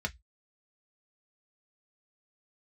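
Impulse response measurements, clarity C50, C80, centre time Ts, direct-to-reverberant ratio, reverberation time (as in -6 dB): 26.5 dB, 39.5 dB, 4 ms, 3.0 dB, 0.10 s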